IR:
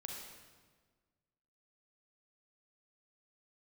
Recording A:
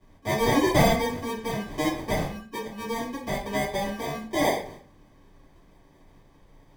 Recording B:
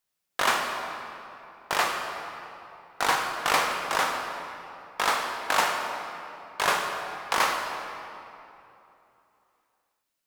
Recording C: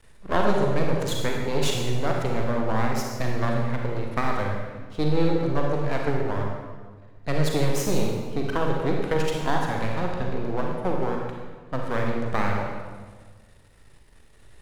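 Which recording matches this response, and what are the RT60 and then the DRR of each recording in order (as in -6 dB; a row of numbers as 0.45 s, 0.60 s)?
C; 0.40 s, 3.0 s, 1.5 s; -10.0 dB, 2.5 dB, -0.5 dB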